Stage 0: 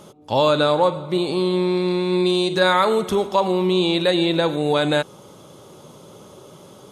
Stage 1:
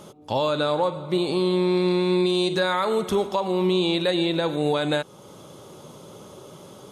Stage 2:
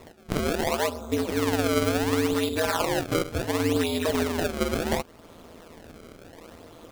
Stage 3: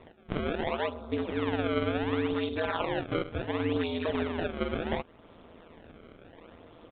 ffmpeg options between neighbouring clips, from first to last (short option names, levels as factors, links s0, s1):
-af "alimiter=limit=0.224:level=0:latency=1:release=365"
-af "acrusher=samples=28:mix=1:aa=0.000001:lfo=1:lforange=44.8:lforate=0.7,aeval=exprs='val(0)*sin(2*PI*82*n/s)':c=same"
-af "aresample=8000,aresample=44100,volume=0.562"